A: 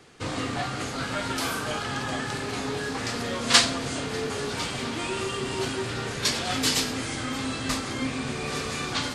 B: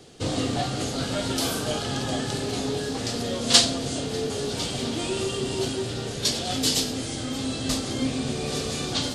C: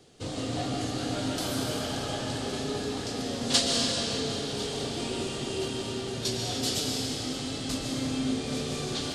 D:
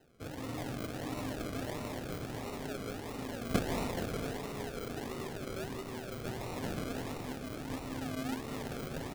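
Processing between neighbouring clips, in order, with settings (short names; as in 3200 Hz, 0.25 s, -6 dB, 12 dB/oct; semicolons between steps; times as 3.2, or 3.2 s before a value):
band shelf 1500 Hz -9.5 dB; vocal rider within 4 dB 2 s; gain +1.5 dB
digital reverb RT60 4.6 s, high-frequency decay 0.8×, pre-delay 90 ms, DRR -2 dB; gain -8 dB
decimation with a swept rate 38×, swing 60% 1.5 Hz; echo 0.467 s -13 dB; gain -8 dB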